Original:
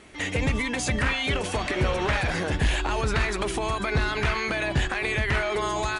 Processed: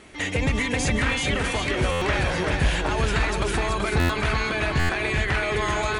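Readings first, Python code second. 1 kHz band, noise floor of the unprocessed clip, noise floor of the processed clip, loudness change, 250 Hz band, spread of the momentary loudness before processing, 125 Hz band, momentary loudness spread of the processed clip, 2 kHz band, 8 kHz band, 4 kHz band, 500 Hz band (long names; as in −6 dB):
+1.5 dB, −32 dBFS, −29 dBFS, +2.0 dB, +2.5 dB, 3 LU, +2.5 dB, 2 LU, +2.0 dB, +2.0 dB, +2.0 dB, +1.5 dB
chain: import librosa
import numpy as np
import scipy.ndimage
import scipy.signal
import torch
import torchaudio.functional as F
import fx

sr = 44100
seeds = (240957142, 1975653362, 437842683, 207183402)

p1 = fx.rider(x, sr, range_db=10, speed_s=2.0)
p2 = p1 + fx.echo_feedback(p1, sr, ms=381, feedback_pct=44, wet_db=-4, dry=0)
y = fx.buffer_glitch(p2, sr, at_s=(1.91, 3.99, 4.79), block=512, repeats=8)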